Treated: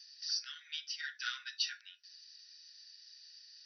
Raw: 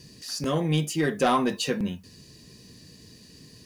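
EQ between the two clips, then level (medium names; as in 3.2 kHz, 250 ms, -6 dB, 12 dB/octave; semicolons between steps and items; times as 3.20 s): rippled Chebyshev high-pass 1.4 kHz, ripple 6 dB; brick-wall FIR low-pass 6 kHz; peaking EQ 2.1 kHz -11 dB 0.49 oct; 0.0 dB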